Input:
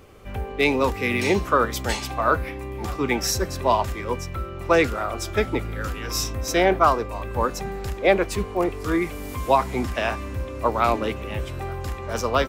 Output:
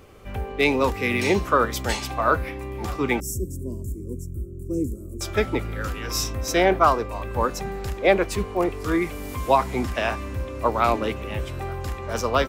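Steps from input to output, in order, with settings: 3.20–5.21 s: elliptic band-stop 340–7800 Hz, stop band 40 dB

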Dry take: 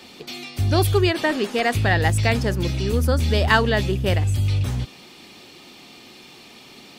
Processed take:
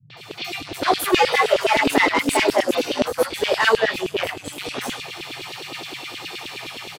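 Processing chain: level rider gain up to 8.5 dB; three bands offset in time lows, mids, highs 100/170 ms, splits 160/4900 Hz; saturation -15.5 dBFS, distortion -11 dB; chorus voices 2, 1.3 Hz, delay 24 ms, depth 3 ms; 1.19–3.03 s: frequency shift +180 Hz; LFO high-pass saw down 9.6 Hz 300–3500 Hz; band noise 100–170 Hz -58 dBFS; trim +5.5 dB

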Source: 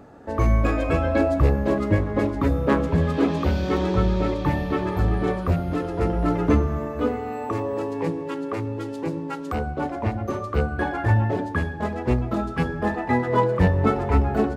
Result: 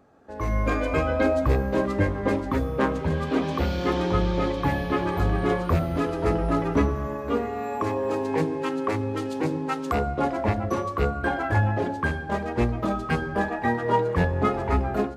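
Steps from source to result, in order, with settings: bass shelf 450 Hz -5.5 dB; level rider gain up to 15 dB; speed mistake 25 fps video run at 24 fps; trim -9 dB

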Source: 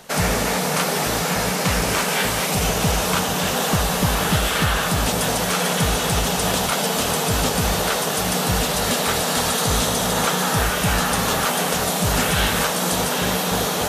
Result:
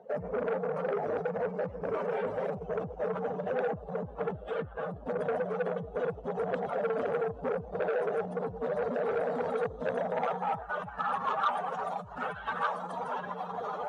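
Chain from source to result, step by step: spectral contrast enhancement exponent 2.4; band-pass sweep 490 Hz -> 1.1 kHz, 9.73–11.04 s; transformer saturation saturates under 1.1 kHz; trim -2.5 dB

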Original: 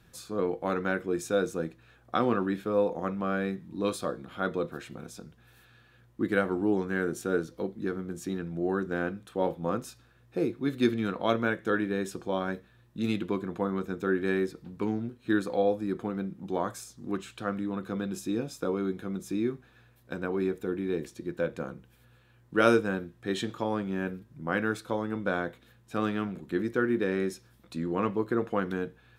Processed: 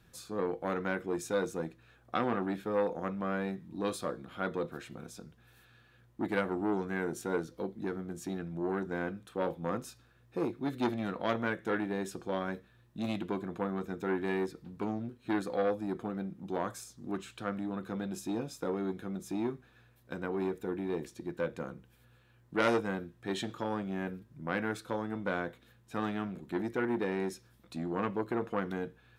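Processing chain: transformer saturation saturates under 1.4 kHz; trim -3 dB

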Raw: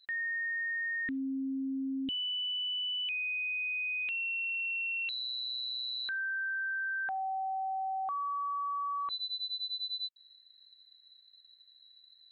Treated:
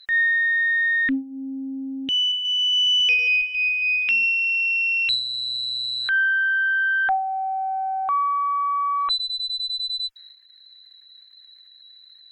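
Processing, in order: 2.18–4.26 s: backward echo that repeats 137 ms, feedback 54%, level -11 dB; high-pass 130 Hz 6 dB/octave; peaking EQ 1.9 kHz +9.5 dB 2.6 oct; Chebyshev shaper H 2 -23 dB, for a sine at -19 dBFS; transient shaper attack -6 dB, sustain +6 dB; reverb removal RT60 0.89 s; trim +8 dB

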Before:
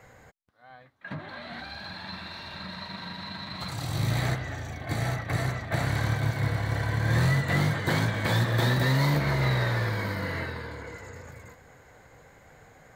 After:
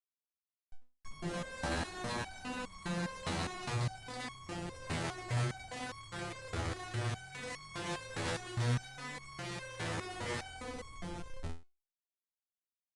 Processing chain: Schmitt trigger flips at -38.5 dBFS; resampled via 22.05 kHz; resonator arpeggio 4.9 Hz 83–1100 Hz; trim +3 dB

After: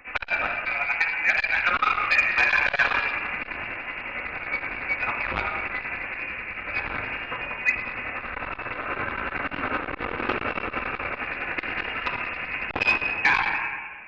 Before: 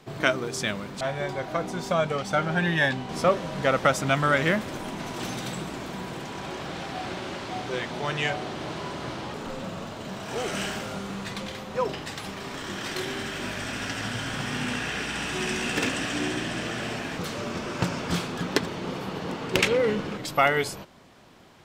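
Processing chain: high-pass 590 Hz 12 dB/octave; tremolo 7 Hz, depth 62%; time stretch by phase-locked vocoder 0.65×; simulated room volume 2000 m³, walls mixed, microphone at 1.9 m; frequency inversion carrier 3 kHz; loudness maximiser +16 dB; transformer saturation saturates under 1.1 kHz; trim -7 dB

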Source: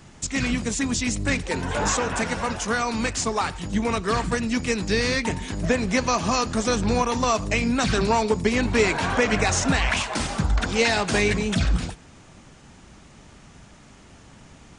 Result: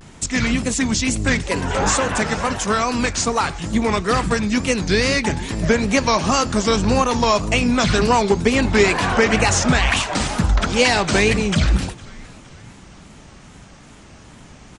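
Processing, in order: frequency-shifting echo 463 ms, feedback 52%, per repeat -81 Hz, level -23 dB; wow and flutter 140 cents; trim +5 dB

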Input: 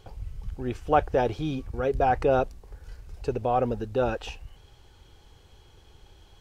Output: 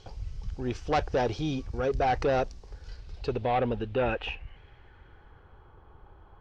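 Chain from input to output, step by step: saturation -20 dBFS, distortion -12 dB; low-pass sweep 5.5 kHz -> 1.2 kHz, 2.65–5.76 s

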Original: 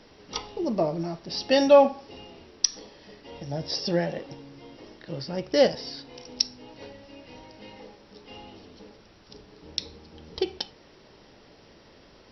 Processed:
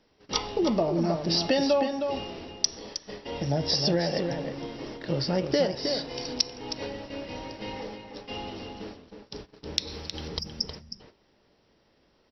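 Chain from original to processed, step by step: gate -48 dBFS, range -21 dB; 9.87–10.28 s: treble shelf 2.1 kHz +8.5 dB; 10.39–10.69 s: spectral selection erased 250–4700 Hz; compression 8:1, threshold -30 dBFS, peak gain reduction 18.5 dB; echo from a far wall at 54 m, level -6 dB; trim +8 dB

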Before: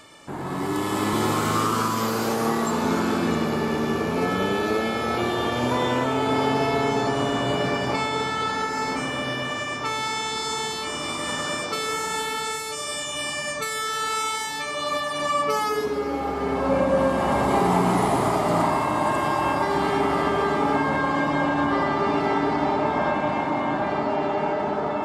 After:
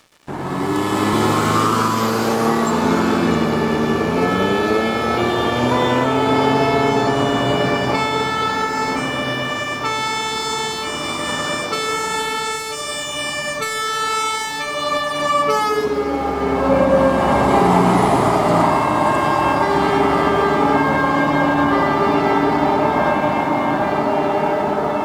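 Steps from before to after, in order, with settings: treble shelf 8.5 kHz -7.5 dB; crossover distortion -46 dBFS; trim +7 dB

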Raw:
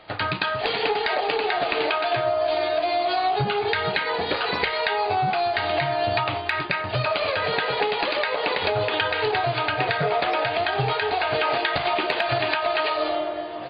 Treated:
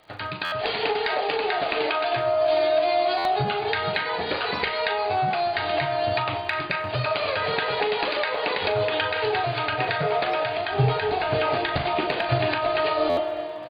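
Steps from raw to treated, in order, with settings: 10.71–13.20 s: bass shelf 380 Hz +11.5 dB; level rider gain up to 7.5 dB; crackle 63 per s -40 dBFS; doubling 40 ms -10.5 dB; spring tank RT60 2.8 s, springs 59 ms, chirp 55 ms, DRR 15 dB; buffer glitch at 0.44/3.17/13.09 s, samples 512, times 6; trim -8 dB

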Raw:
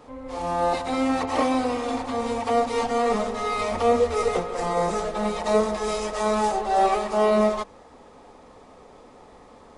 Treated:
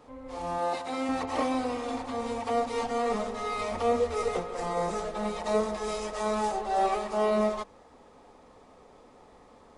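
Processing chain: 0.58–1.09 s: high-pass 260 Hz 6 dB/octave; trim -6 dB

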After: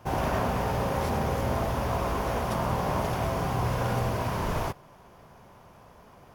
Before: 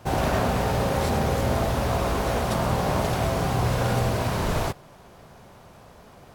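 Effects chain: graphic EQ with 31 bands 1 kHz +5 dB, 4 kHz -6 dB, 8 kHz -7 dB; trim -4.5 dB

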